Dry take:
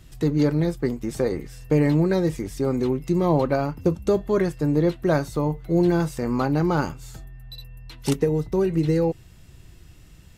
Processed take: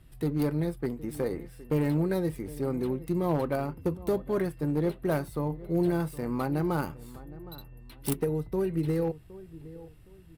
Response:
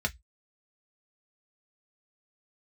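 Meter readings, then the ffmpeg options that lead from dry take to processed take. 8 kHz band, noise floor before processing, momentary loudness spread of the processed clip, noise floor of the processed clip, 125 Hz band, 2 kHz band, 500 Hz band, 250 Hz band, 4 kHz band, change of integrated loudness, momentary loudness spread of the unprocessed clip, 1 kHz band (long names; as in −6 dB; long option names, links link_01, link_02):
−5.0 dB, −48 dBFS, 18 LU, −52 dBFS, −7.0 dB, −7.5 dB, −7.0 dB, −7.0 dB, −9.5 dB, −7.0 dB, 11 LU, −7.0 dB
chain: -filter_complex "[0:a]adynamicsmooth=sensitivity=5:basefreq=4100,aexciter=amount=12.9:drive=7.2:freq=9500,asplit=2[link_01][link_02];[link_02]adelay=765,lowpass=frequency=1400:poles=1,volume=-17.5dB,asplit=2[link_03][link_04];[link_04]adelay=765,lowpass=frequency=1400:poles=1,volume=0.33,asplit=2[link_05][link_06];[link_06]adelay=765,lowpass=frequency=1400:poles=1,volume=0.33[link_07];[link_03][link_05][link_07]amix=inputs=3:normalize=0[link_08];[link_01][link_08]amix=inputs=2:normalize=0,aeval=exprs='clip(val(0),-1,0.178)':channel_layout=same,volume=-7dB"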